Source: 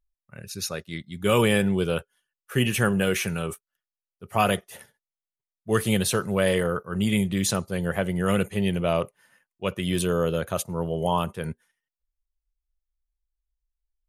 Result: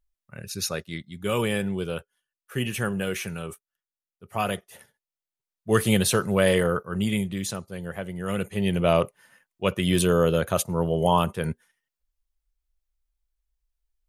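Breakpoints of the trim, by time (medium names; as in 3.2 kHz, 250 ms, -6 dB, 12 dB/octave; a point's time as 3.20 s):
0.80 s +2 dB
1.29 s -5 dB
4.68 s -5 dB
5.72 s +2 dB
6.75 s +2 dB
7.59 s -7.5 dB
8.19 s -7.5 dB
8.88 s +3.5 dB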